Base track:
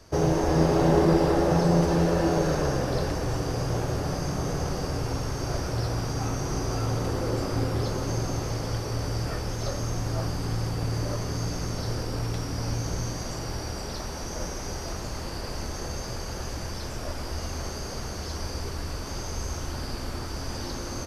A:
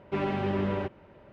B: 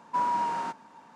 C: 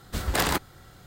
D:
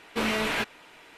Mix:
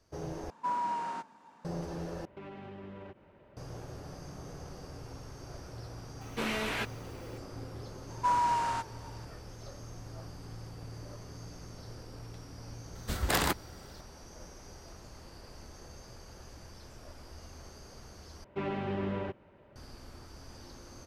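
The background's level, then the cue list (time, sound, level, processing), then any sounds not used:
base track -16.5 dB
0.50 s: replace with B -5.5 dB
2.25 s: replace with A -5.5 dB + compression 8:1, threshold -37 dBFS
6.21 s: add D -6.5 dB + word length cut 10-bit, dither triangular
8.10 s: add B -0.5 dB + tilt EQ +2 dB/octave
12.95 s: add C -4 dB
18.44 s: replace with A -5.5 dB

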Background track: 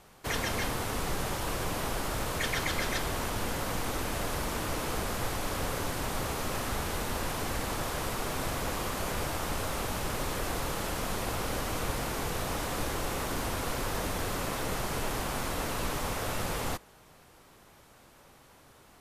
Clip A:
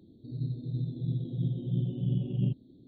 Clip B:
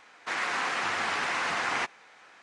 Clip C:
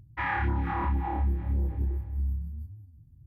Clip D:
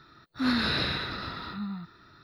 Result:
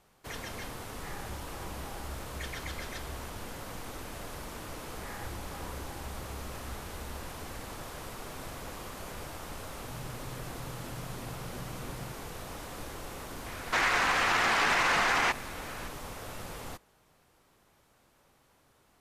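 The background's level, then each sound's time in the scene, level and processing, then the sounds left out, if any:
background track -9 dB
0.84 s: add C -17.5 dB
4.84 s: add C -17 dB
9.59 s: add A -8 dB + compression, threshold -33 dBFS
13.46 s: add B -17 dB + loudness maximiser +26.5 dB
not used: D

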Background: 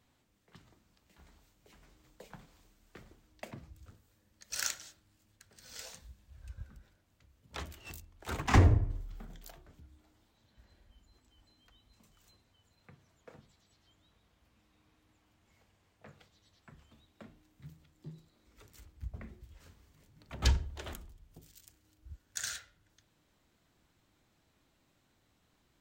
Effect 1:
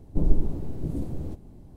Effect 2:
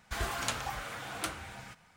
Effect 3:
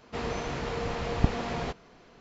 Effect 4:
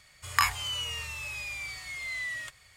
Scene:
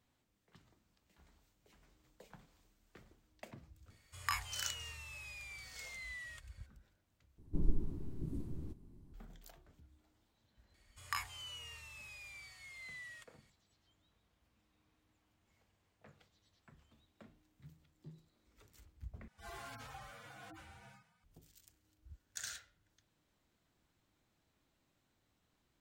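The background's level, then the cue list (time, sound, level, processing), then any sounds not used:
background -6.5 dB
3.90 s: add 4 -12.5 dB + bass shelf 64 Hz +9.5 dB
7.38 s: replace with 1 -11.5 dB + high-order bell 620 Hz -9.5 dB 1 oct
10.74 s: add 4 -15 dB
19.28 s: replace with 2 -10.5 dB + harmonic-percussive separation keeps harmonic
not used: 3

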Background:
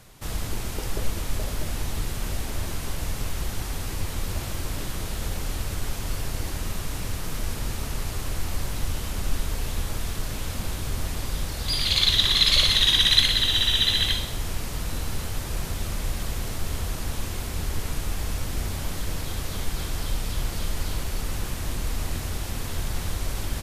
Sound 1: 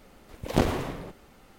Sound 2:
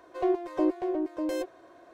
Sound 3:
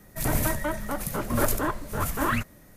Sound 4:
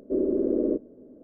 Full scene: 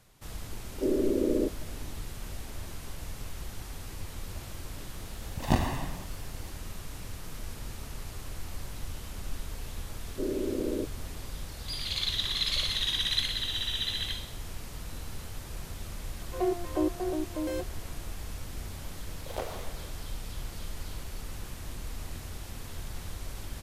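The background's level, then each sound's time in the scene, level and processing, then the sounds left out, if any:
background -10.5 dB
0.71 s: add 4 -2.5 dB
4.94 s: add 1 -4 dB + comb 1.1 ms, depth 73%
10.08 s: add 4 -7 dB
16.18 s: add 2 -2.5 dB
18.80 s: add 1 -4 dB + ladder high-pass 440 Hz, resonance 40%
not used: 3

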